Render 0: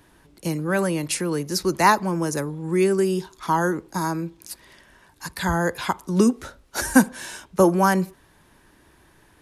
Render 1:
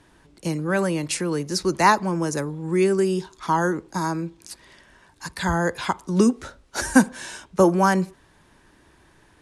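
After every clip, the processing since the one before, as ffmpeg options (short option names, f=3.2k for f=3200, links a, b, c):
-af "lowpass=f=9.8k:w=0.5412,lowpass=f=9.8k:w=1.3066"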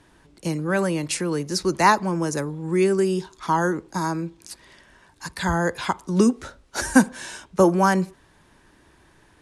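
-af anull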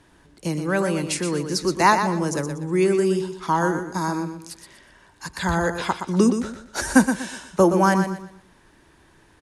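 -af "aecho=1:1:121|242|363|484:0.398|0.123|0.0383|0.0119"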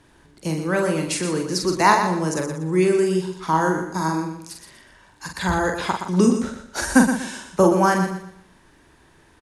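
-filter_complex "[0:a]asplit=2[a][b];[b]adelay=44,volume=-5dB[c];[a][c]amix=inputs=2:normalize=0"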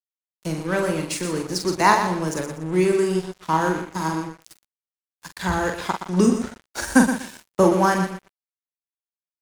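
-af "aeval=exprs='sgn(val(0))*max(abs(val(0))-0.0211,0)':c=same"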